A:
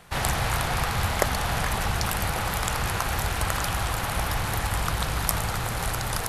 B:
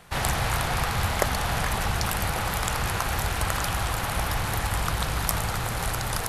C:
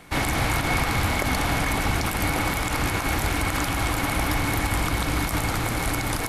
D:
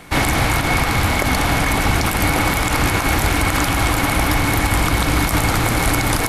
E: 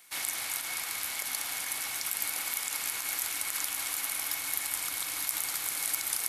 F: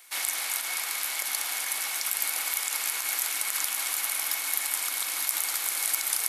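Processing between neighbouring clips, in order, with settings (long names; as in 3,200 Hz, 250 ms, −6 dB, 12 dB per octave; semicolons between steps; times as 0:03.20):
soft clipping −3.5 dBFS, distortion −32 dB
brickwall limiter −15.5 dBFS, peak gain reduction 10 dB; hollow resonant body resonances 290/2,200 Hz, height 15 dB, ringing for 60 ms; level +2 dB
speech leveller; level +7 dB
first difference; delay that swaps between a low-pass and a high-pass 175 ms, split 2,400 Hz, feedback 82%, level −10.5 dB; level −7.5 dB
high-pass filter 390 Hz 12 dB per octave; level +4 dB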